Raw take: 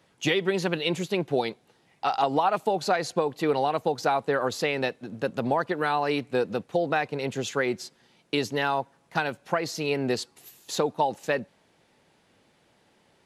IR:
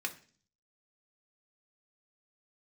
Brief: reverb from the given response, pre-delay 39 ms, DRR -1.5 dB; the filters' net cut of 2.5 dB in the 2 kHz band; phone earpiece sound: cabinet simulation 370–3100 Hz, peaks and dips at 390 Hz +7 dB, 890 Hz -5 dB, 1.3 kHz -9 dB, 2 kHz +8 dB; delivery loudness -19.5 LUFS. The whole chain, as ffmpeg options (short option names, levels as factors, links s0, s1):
-filter_complex "[0:a]equalizer=f=2000:t=o:g=-5.5,asplit=2[s0][s1];[1:a]atrim=start_sample=2205,adelay=39[s2];[s1][s2]afir=irnorm=-1:irlink=0,volume=0.841[s3];[s0][s3]amix=inputs=2:normalize=0,highpass=370,equalizer=f=390:t=q:w=4:g=7,equalizer=f=890:t=q:w=4:g=-5,equalizer=f=1300:t=q:w=4:g=-9,equalizer=f=2000:t=q:w=4:g=8,lowpass=f=3100:w=0.5412,lowpass=f=3100:w=1.3066,volume=2.11"